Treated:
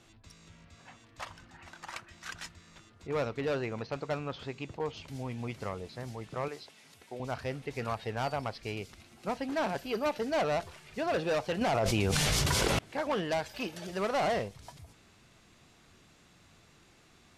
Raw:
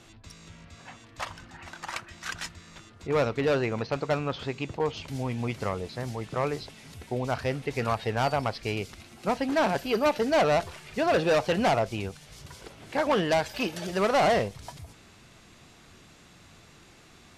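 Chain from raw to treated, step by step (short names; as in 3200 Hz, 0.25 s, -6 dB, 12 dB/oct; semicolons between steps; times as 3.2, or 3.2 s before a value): 6.48–7.2 HPF 500 Hz 6 dB/oct; 11.61–12.79 fast leveller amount 100%; gain -7 dB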